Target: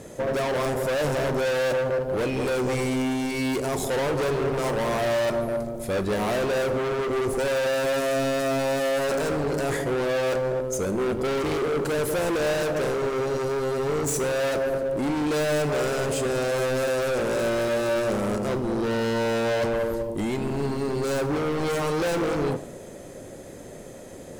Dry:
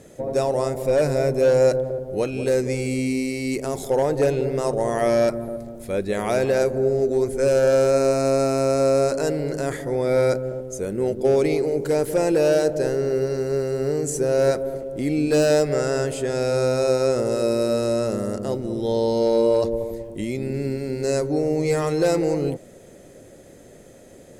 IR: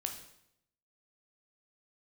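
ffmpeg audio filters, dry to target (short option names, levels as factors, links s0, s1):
-filter_complex "[0:a]equalizer=f=1000:t=o:w=0.52:g=6,asoftclip=type=hard:threshold=0.0398,asplit=2[s0][s1];[1:a]atrim=start_sample=2205[s2];[s1][s2]afir=irnorm=-1:irlink=0,volume=0.794[s3];[s0][s3]amix=inputs=2:normalize=0"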